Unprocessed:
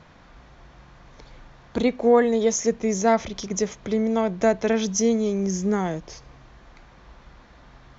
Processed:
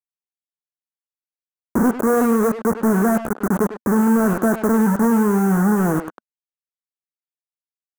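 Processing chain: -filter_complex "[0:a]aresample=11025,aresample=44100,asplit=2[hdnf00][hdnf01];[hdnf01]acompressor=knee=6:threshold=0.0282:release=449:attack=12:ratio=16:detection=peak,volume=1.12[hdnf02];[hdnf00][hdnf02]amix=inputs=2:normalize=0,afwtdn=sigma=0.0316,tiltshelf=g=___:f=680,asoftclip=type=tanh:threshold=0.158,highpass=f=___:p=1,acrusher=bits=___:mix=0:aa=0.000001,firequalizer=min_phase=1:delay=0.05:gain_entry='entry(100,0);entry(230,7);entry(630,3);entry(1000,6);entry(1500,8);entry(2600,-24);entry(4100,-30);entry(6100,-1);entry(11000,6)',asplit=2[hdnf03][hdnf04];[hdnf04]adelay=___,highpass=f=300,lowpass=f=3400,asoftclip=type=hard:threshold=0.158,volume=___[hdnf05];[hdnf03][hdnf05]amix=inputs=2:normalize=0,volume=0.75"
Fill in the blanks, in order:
8, 48, 3, 100, 0.398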